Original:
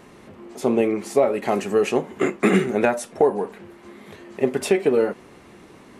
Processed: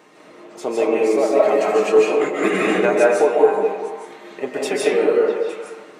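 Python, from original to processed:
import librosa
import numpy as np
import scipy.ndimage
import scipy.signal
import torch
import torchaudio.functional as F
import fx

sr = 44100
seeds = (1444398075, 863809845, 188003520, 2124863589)

y = scipy.signal.sosfilt(scipy.signal.butter(2, 320.0, 'highpass', fs=sr, output='sos'), x)
y = fx.peak_eq(y, sr, hz=11000.0, db=-14.5, octaves=0.21)
y = y + 0.47 * np.pad(y, (int(6.5 * sr / 1000.0), 0))[:len(y)]
y = fx.echo_stepped(y, sr, ms=215, hz=440.0, octaves=1.4, feedback_pct=70, wet_db=-6.0)
y = fx.rev_freeverb(y, sr, rt60_s=1.0, hf_ratio=0.55, predelay_ms=110, drr_db=-4.0)
y = y * 10.0 ** (-1.5 / 20.0)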